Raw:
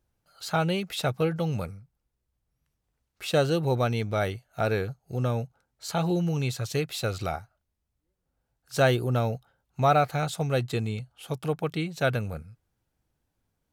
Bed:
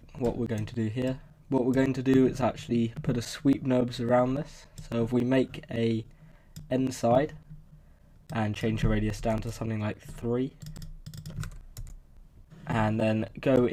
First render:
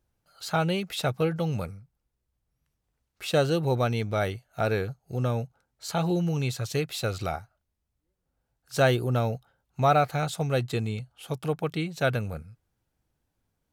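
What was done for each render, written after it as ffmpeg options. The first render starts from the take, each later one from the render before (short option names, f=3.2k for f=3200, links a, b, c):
-af anull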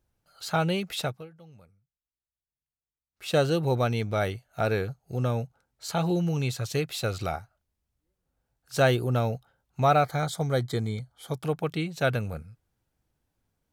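-filter_complex "[0:a]asettb=1/sr,asplit=3[a][b][c];[a]atrim=end=10.044[d];[b]atrim=start=10.04:end=11.43,asetpts=PTS-STARTPTS,afade=t=in:d=0.004:c=qsin,afade=t=out:st=1.386:d=0.004:c=qsin,asuperstop=centerf=2700:order=8:qfactor=4.6[e];[c]atrim=start=11.426[f];[d][e]acrossfade=d=0.004:c1=hsin:c2=qsin[g];[g][f]acrossfade=d=0.004:c1=qsin:c2=hsin,asplit=3[h][i][j];[h]atrim=end=1.31,asetpts=PTS-STARTPTS,afade=t=out:st=1.01:d=0.3:c=qua:silence=0.0707946[k];[i]atrim=start=1.31:end=3.02,asetpts=PTS-STARTPTS,volume=-23dB[l];[j]atrim=start=3.02,asetpts=PTS-STARTPTS,afade=t=in:d=0.3:c=qua:silence=0.0707946[m];[k][l][m]concat=n=3:v=0:a=1"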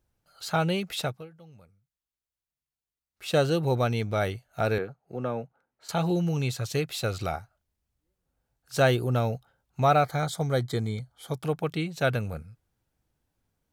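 -filter_complex "[0:a]asettb=1/sr,asplit=3[a][b][c];[a]atrim=end=4.784[d];[b]atrim=start=4.78:end=5.89,asetpts=PTS-STARTPTS,afade=t=in:d=0.004:c=qsin,afade=t=out:st=1.106:d=0.004:c=qsin,acrossover=split=180 2600:gain=0.158 1 0.158[e][f][g];[e][f][g]amix=inputs=3:normalize=0[h];[c]atrim=start=5.886[i];[d][h]acrossfade=d=0.004:c1=hsin:c2=qsin[j];[j][i]acrossfade=d=0.004:c1=qsin:c2=hsin"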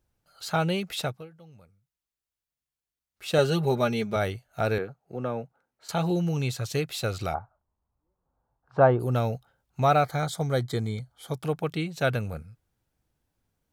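-filter_complex "[0:a]asettb=1/sr,asplit=3[a][b][c];[a]atrim=end=3.384[d];[b]atrim=start=3.38:end=4.16,asetpts=PTS-STARTPTS,afade=t=in:d=0.004:c=qsin,afade=t=out:st=0.776:d=0.004:c=qsin,aecho=1:1:4.9:0.73,atrim=end_sample=34398[e];[c]atrim=start=4.156[f];[d][e]acrossfade=d=0.004:c1=hsin:c2=qsin[g];[g][f]acrossfade=d=0.004:c1=qsin:c2=hsin,asplit=3[h][i][j];[h]afade=t=out:st=7.33:d=0.02[k];[i]lowpass=f=1k:t=q:w=3,afade=t=in:st=7.33:d=0.02,afade=t=out:st=8.99:d=0.02[l];[j]afade=t=in:st=8.99:d=0.02[m];[k][l][m]amix=inputs=3:normalize=0"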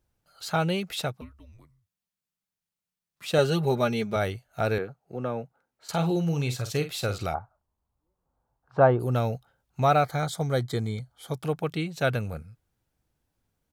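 -filter_complex "[0:a]asettb=1/sr,asplit=3[a][b][c];[a]atrim=end=1.214[d];[b]atrim=start=1.21:end=3.26,asetpts=PTS-STARTPTS,afade=t=in:d=0.004:c=qsin,afade=t=out:st=2.046:d=0.004:c=qsin,afreqshift=-230[e];[c]atrim=start=3.256[f];[d][e]acrossfade=d=0.004:c1=hsin:c2=qsin[g];[g][f]acrossfade=d=0.004:c1=qsin:c2=hsin,asplit=3[h][i][j];[h]afade=t=out:st=5.91:d=0.02[k];[i]asplit=2[l][m];[m]adelay=48,volume=-10.5dB[n];[l][n]amix=inputs=2:normalize=0,afade=t=in:st=5.91:d=0.02,afade=t=out:st=7.25:d=0.02[o];[j]afade=t=in:st=7.25:d=0.02[p];[k][o][p]amix=inputs=3:normalize=0"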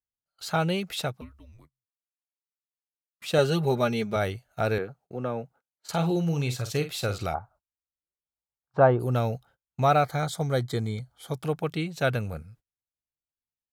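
-af "agate=range=-28dB:threshold=-54dB:ratio=16:detection=peak"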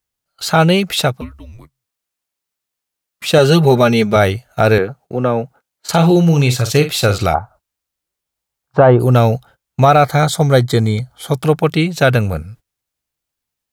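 -af "acontrast=38,alimiter=level_in=9.5dB:limit=-1dB:release=50:level=0:latency=1"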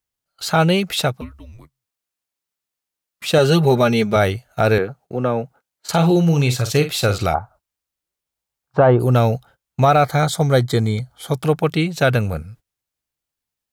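-af "volume=-4dB"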